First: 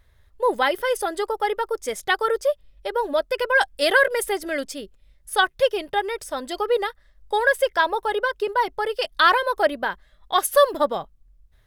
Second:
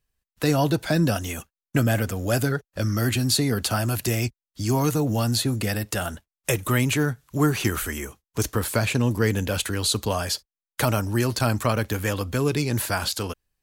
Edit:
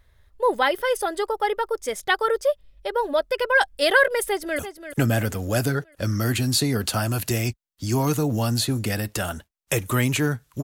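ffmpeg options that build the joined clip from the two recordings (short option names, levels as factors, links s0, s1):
-filter_complex "[0:a]apad=whole_dur=10.63,atrim=end=10.63,atrim=end=4.592[s0];[1:a]atrim=start=1.358:end=7.4[s1];[s0][s1]acrossfade=d=0.004:c1=hsin:c2=hsin,asplit=2[s2][s3];[s3]afade=t=in:st=4.22:d=0.01,afade=t=out:st=4.59:d=0.01,aecho=0:1:340|680|1020|1360|1700:0.281838|0.140919|0.0704596|0.0352298|0.0176149[s4];[s2][s4]amix=inputs=2:normalize=0"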